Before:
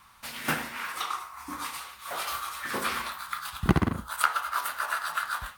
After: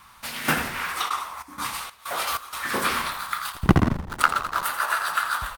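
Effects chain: 3.52–4.63 s: hysteresis with a dead band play -25 dBFS; frequency-shifting echo 84 ms, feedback 51%, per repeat -81 Hz, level -10.5 dB; 1.08–2.69 s: trance gate ".xx.xx.xx" 95 bpm -12 dB; trim +5.5 dB

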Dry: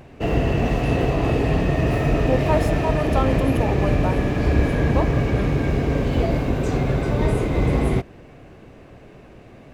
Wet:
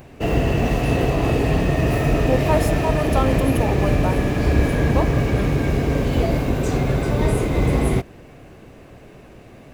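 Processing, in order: treble shelf 7.7 kHz +11.5 dB; trim +1 dB

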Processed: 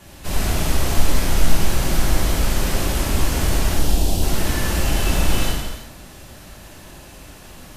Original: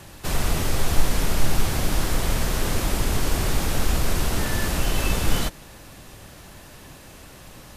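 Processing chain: 3.73–4.23 s: high-order bell 1.6 kHz -14.5 dB 1.3 oct; reverberation, pre-delay 3 ms, DRR -7 dB; trim -5 dB

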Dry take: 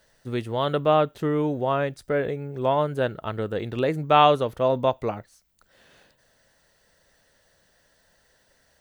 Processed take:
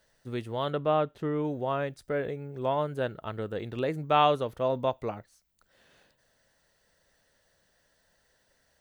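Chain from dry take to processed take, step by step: 0.70–1.45 s: treble shelf 5.2 kHz -10 dB; trim -6 dB

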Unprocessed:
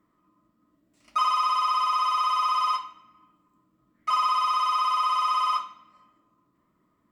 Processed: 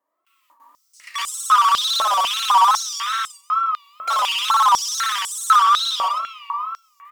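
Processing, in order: in parallel at -1 dB: compression, threshold -33 dBFS, peak gain reduction 12.5 dB; on the sum: multi-tap echo 64/67/390/507/606 ms -9/-4/-6.5/-5.5/-11.5 dB; gate with hold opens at -51 dBFS; treble shelf 8.4 kHz +10.5 dB; reverberation RT60 3.7 s, pre-delay 135 ms, DRR 14 dB; overload inside the chain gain 26 dB; wow and flutter 150 cents; step-sequenced high-pass 4 Hz 620–8000 Hz; trim +5.5 dB

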